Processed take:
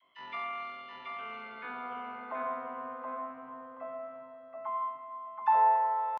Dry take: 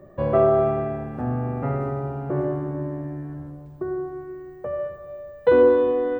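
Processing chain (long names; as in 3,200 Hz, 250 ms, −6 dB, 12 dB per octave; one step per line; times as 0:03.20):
spectral tilt −1.5 dB per octave
all-pass dispersion lows, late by 41 ms, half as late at 570 Hz
band-pass filter sweep 1,700 Hz → 630 Hz, 0:01.30–0:01.95
pitch shifter +10 semitones
on a send: repeating echo 727 ms, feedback 21%, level −4 dB
on the sum: level −6.5 dB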